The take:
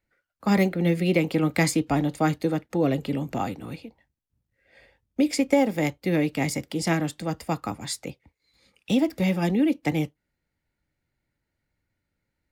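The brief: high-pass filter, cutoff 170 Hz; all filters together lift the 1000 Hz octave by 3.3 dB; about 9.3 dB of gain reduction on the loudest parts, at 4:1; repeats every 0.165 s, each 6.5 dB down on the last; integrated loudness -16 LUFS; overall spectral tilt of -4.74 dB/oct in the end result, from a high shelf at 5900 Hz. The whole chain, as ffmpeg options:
-af "highpass=170,equalizer=f=1k:t=o:g=4.5,highshelf=f=5.9k:g=4.5,acompressor=threshold=-25dB:ratio=4,aecho=1:1:165|330|495|660|825|990:0.473|0.222|0.105|0.0491|0.0231|0.0109,volume=13.5dB"

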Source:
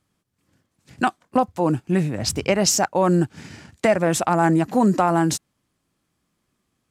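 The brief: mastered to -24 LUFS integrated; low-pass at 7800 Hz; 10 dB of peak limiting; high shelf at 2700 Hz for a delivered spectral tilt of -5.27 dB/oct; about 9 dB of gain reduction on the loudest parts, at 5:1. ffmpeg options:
-af "lowpass=7.8k,highshelf=f=2.7k:g=-6.5,acompressor=threshold=-24dB:ratio=5,volume=9dB,alimiter=limit=-14dB:level=0:latency=1"

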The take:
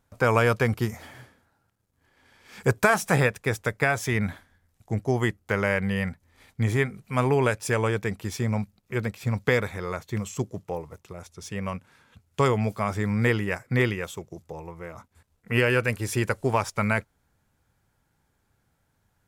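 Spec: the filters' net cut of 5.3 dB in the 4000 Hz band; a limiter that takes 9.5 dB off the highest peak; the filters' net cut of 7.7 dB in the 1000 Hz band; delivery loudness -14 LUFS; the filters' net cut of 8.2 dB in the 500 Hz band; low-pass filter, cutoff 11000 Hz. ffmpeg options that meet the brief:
-af "lowpass=11k,equalizer=f=500:t=o:g=-8.5,equalizer=f=1k:t=o:g=-7.5,equalizer=f=4k:t=o:g=-7,volume=18.5dB,alimiter=limit=-2.5dB:level=0:latency=1"

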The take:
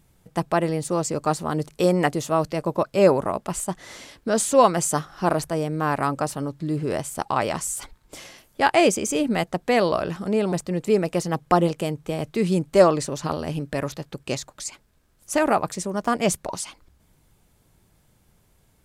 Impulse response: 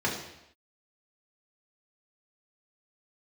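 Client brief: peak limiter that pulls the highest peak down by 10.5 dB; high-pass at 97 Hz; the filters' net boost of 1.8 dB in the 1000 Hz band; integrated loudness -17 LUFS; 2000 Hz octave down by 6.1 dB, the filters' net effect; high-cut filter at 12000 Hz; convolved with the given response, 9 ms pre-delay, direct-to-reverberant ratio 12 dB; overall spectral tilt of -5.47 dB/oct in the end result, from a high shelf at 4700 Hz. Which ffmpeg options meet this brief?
-filter_complex "[0:a]highpass=97,lowpass=12k,equalizer=f=1k:t=o:g=4.5,equalizer=f=2k:t=o:g=-8.5,highshelf=f=4.7k:g=-7.5,alimiter=limit=-13.5dB:level=0:latency=1,asplit=2[a][b];[1:a]atrim=start_sample=2205,adelay=9[c];[b][c]afir=irnorm=-1:irlink=0,volume=-22.5dB[d];[a][d]amix=inputs=2:normalize=0,volume=9dB"

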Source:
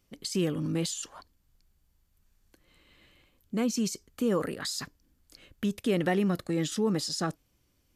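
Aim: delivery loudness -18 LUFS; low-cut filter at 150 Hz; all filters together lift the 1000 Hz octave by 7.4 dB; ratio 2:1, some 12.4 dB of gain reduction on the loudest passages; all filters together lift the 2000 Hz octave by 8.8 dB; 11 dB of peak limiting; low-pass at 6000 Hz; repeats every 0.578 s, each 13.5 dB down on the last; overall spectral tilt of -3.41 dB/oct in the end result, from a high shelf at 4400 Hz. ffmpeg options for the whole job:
-af "highpass=150,lowpass=6k,equalizer=f=1k:t=o:g=8,equalizer=f=2k:t=o:g=6.5,highshelf=f=4.4k:g=9,acompressor=threshold=-43dB:ratio=2,alimiter=level_in=9dB:limit=-24dB:level=0:latency=1,volume=-9dB,aecho=1:1:578|1156:0.211|0.0444,volume=25.5dB"

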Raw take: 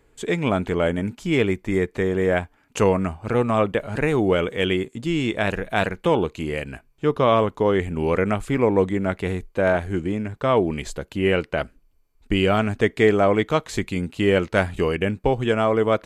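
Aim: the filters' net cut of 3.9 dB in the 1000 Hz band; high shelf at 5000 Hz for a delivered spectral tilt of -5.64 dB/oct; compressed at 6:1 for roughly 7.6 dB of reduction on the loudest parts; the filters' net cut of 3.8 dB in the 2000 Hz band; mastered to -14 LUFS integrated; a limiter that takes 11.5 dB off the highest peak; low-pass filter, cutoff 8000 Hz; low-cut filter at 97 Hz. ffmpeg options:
-af "highpass=97,lowpass=8k,equalizer=f=1k:t=o:g=-4.5,equalizer=f=2k:t=o:g=-4.5,highshelf=f=5k:g=7,acompressor=threshold=-22dB:ratio=6,volume=19dB,alimiter=limit=-3dB:level=0:latency=1"

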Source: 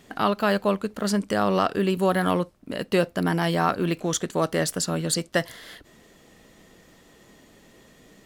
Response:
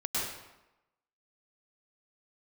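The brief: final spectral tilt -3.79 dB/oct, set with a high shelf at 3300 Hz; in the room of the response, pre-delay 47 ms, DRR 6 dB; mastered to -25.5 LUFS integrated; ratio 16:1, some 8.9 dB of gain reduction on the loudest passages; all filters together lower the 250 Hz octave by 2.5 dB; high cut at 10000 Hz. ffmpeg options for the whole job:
-filter_complex "[0:a]lowpass=10k,equalizer=f=250:t=o:g=-4,highshelf=f=3.3k:g=5,acompressor=threshold=-25dB:ratio=16,asplit=2[a][b];[1:a]atrim=start_sample=2205,adelay=47[c];[b][c]afir=irnorm=-1:irlink=0,volume=-13dB[d];[a][d]amix=inputs=2:normalize=0,volume=4.5dB"

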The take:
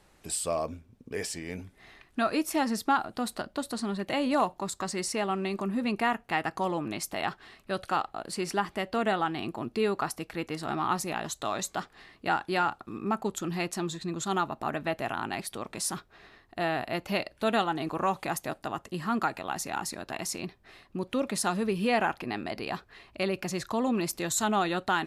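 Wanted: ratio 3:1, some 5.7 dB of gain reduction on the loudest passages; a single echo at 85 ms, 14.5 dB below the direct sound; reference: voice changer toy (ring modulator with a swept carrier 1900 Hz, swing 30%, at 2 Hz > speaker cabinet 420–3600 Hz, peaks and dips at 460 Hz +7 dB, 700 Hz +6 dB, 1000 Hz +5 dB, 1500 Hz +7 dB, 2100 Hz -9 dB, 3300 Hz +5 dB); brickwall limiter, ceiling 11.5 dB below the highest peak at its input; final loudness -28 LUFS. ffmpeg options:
-af "acompressor=threshold=-29dB:ratio=3,alimiter=level_in=5dB:limit=-24dB:level=0:latency=1,volume=-5dB,aecho=1:1:85:0.188,aeval=exprs='val(0)*sin(2*PI*1900*n/s+1900*0.3/2*sin(2*PI*2*n/s))':c=same,highpass=420,equalizer=f=460:t=q:w=4:g=7,equalizer=f=700:t=q:w=4:g=6,equalizer=f=1k:t=q:w=4:g=5,equalizer=f=1.5k:t=q:w=4:g=7,equalizer=f=2.1k:t=q:w=4:g=-9,equalizer=f=3.3k:t=q:w=4:g=5,lowpass=f=3.6k:w=0.5412,lowpass=f=3.6k:w=1.3066,volume=11.5dB"

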